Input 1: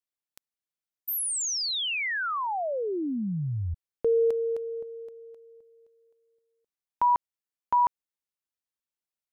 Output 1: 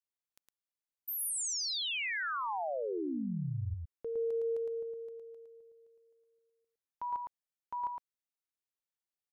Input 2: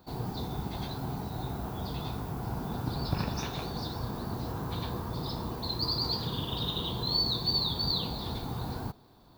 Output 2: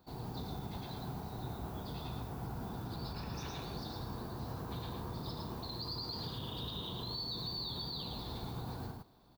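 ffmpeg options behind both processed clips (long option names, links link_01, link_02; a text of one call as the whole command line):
ffmpeg -i in.wav -filter_complex "[0:a]alimiter=level_in=2.5dB:limit=-24dB:level=0:latency=1:release=50,volume=-2.5dB,asplit=2[link_01][link_02];[link_02]aecho=0:1:111:0.668[link_03];[link_01][link_03]amix=inputs=2:normalize=0,volume=-7.5dB" out.wav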